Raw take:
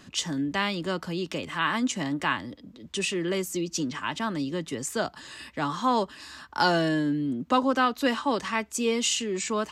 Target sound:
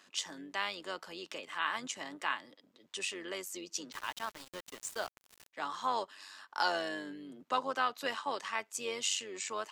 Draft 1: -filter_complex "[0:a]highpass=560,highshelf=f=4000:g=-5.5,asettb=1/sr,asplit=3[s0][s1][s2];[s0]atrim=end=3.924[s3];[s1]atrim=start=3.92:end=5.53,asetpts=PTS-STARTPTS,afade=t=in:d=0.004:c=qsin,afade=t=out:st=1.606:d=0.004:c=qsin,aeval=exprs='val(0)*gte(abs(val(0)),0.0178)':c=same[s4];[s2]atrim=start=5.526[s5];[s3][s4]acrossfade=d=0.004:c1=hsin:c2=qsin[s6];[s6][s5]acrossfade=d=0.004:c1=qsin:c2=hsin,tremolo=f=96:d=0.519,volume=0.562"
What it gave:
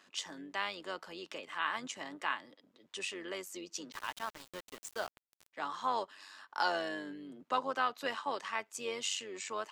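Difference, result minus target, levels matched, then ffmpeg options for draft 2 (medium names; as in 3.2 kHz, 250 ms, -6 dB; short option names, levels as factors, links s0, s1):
8 kHz band -3.0 dB
-filter_complex "[0:a]highpass=560,asettb=1/sr,asplit=3[s0][s1][s2];[s0]atrim=end=3.924[s3];[s1]atrim=start=3.92:end=5.53,asetpts=PTS-STARTPTS,afade=t=in:d=0.004:c=qsin,afade=t=out:st=1.606:d=0.004:c=qsin,aeval=exprs='val(0)*gte(abs(val(0)),0.0178)':c=same[s4];[s2]atrim=start=5.526[s5];[s3][s4]acrossfade=d=0.004:c1=hsin:c2=qsin[s6];[s6][s5]acrossfade=d=0.004:c1=qsin:c2=hsin,tremolo=f=96:d=0.519,volume=0.562"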